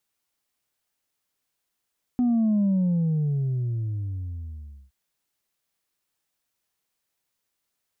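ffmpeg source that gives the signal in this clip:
-f lavfi -i "aevalsrc='0.112*clip((2.72-t)/2.27,0,1)*tanh(1.19*sin(2*PI*250*2.72/log(65/250)*(exp(log(65/250)*t/2.72)-1)))/tanh(1.19)':d=2.72:s=44100"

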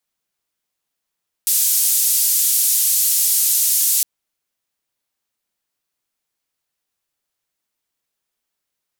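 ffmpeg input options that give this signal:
-f lavfi -i "anoisesrc=c=white:d=2.56:r=44100:seed=1,highpass=f=6700,lowpass=f=15000,volume=-7.2dB"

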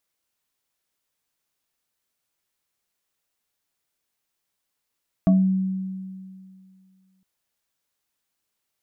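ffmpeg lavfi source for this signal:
-f lavfi -i "aevalsrc='0.251*pow(10,-3*t/2.29)*sin(2*PI*189*t+0.73*pow(10,-3*t/0.32)*sin(2*PI*2.47*189*t))':d=1.96:s=44100"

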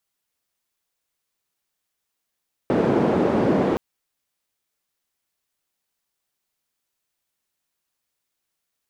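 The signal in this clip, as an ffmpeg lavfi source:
-f lavfi -i "anoisesrc=c=white:d=1.07:r=44100:seed=1,highpass=f=200,lowpass=f=370,volume=5.6dB"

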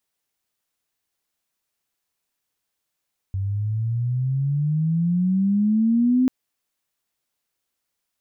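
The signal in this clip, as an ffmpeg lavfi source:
-f lavfi -i "aevalsrc='pow(10,(-22+7.5*t/2.94)/20)*sin(2*PI*95*2.94/log(260/95)*(exp(log(260/95)*t/2.94)-1))':d=2.94:s=44100"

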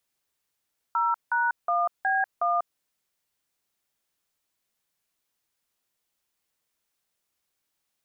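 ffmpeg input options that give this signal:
-f lavfi -i "aevalsrc='0.0631*clip(min(mod(t,0.366),0.193-mod(t,0.366))/0.002,0,1)*(eq(floor(t/0.366),0)*(sin(2*PI*941*mod(t,0.366))+sin(2*PI*1336*mod(t,0.366)))+eq(floor(t/0.366),1)*(sin(2*PI*941*mod(t,0.366))+sin(2*PI*1477*mod(t,0.366)))+eq(floor(t/0.366),2)*(sin(2*PI*697*mod(t,0.366))+sin(2*PI*1209*mod(t,0.366)))+eq(floor(t/0.366),3)*(sin(2*PI*770*mod(t,0.366))+sin(2*PI*1633*mod(t,0.366)))+eq(floor(t/0.366),4)*(sin(2*PI*697*mod(t,0.366))+sin(2*PI*1209*mod(t,0.366))))':d=1.83:s=44100"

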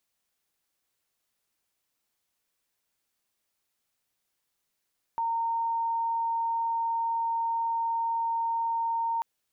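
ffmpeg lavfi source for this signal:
-f lavfi -i "sine=f=919:d=4.04:r=44100,volume=-7.44dB"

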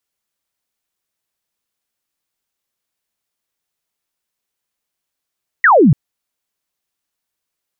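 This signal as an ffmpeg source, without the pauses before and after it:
-f lavfi -i "aevalsrc='0.531*clip(t/0.002,0,1)*clip((0.29-t)/0.002,0,1)*sin(2*PI*2000*0.29/log(120/2000)*(exp(log(120/2000)*t/0.29)-1))':d=0.29:s=44100"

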